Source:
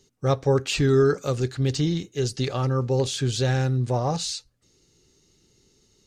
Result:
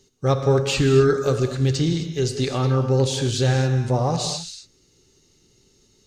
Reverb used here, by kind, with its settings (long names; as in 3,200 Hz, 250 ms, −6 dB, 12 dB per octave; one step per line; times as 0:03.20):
reverb whose tail is shaped and stops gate 290 ms flat, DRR 6 dB
level +2 dB